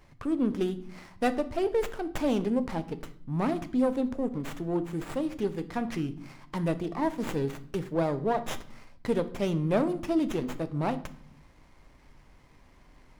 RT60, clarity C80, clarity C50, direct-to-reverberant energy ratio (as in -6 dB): 0.55 s, 19.0 dB, 15.5 dB, 11.0 dB